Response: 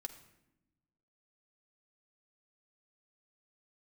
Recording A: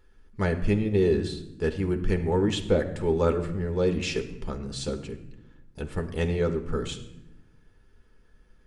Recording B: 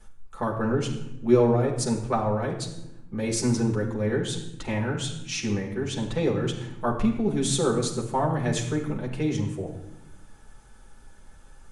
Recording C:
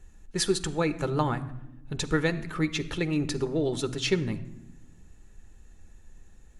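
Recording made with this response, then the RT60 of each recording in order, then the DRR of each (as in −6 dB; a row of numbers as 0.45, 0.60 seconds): A; 0.90, 0.90, 0.90 seconds; 5.0, −2.5, 9.5 decibels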